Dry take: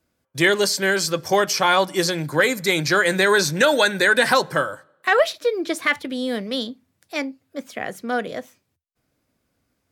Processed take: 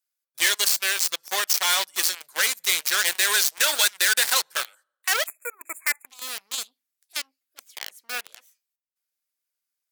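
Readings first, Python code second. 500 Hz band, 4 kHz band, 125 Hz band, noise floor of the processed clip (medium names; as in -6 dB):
-18.0 dB, +1.0 dB, under -30 dB, -85 dBFS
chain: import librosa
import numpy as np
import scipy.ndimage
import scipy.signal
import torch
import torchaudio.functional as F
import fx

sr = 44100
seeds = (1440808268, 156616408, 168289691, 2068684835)

p1 = fx.cheby_harmonics(x, sr, harmonics=(4, 5, 7), levels_db=(-31, -29, -14), full_scale_db=-5.5)
p2 = fx.schmitt(p1, sr, flips_db=-31.5)
p3 = p1 + F.gain(torch.from_numpy(p2), -5.5).numpy()
p4 = fx.highpass(p3, sr, hz=860.0, slope=6)
p5 = fx.spec_erase(p4, sr, start_s=5.27, length_s=0.8, low_hz=2600.0, high_hz=6800.0)
p6 = np.clip(p5, -10.0 ** (-13.0 / 20.0), 10.0 ** (-13.0 / 20.0))
p7 = fx.tilt_eq(p6, sr, slope=4.5)
y = F.gain(torch.from_numpy(p7), -7.0).numpy()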